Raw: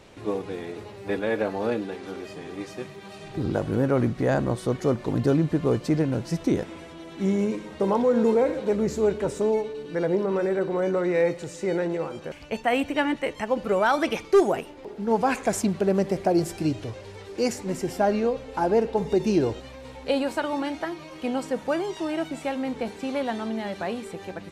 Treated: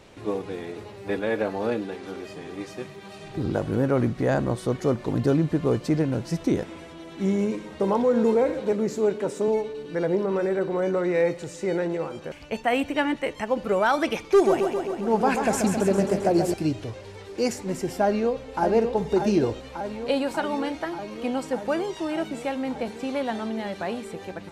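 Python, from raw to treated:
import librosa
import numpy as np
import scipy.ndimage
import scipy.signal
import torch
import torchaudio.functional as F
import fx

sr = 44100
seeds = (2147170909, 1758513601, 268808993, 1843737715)

y = fx.cheby1_highpass(x, sr, hz=210.0, order=2, at=(8.72, 9.48))
y = fx.echo_warbled(y, sr, ms=134, feedback_pct=70, rate_hz=2.8, cents=58, wet_db=-6, at=(14.17, 16.54))
y = fx.echo_throw(y, sr, start_s=18.03, length_s=0.59, ms=590, feedback_pct=80, wet_db=-6.0)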